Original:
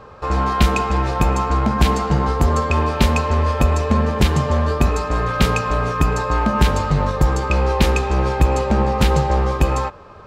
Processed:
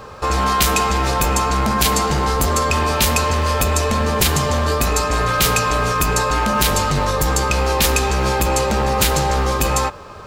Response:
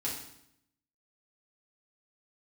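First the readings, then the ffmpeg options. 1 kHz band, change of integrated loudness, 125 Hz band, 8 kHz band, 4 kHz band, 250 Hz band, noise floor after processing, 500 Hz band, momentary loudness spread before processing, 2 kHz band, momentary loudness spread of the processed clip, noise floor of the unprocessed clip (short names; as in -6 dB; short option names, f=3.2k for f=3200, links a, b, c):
+2.5 dB, +1.0 dB, -2.5 dB, +13.0 dB, +7.5 dB, -2.5 dB, -36 dBFS, +1.0 dB, 3 LU, +4.0 dB, 3 LU, -40 dBFS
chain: -af "apsyclip=18dB,aemphasis=mode=production:type=75fm,volume=-13dB"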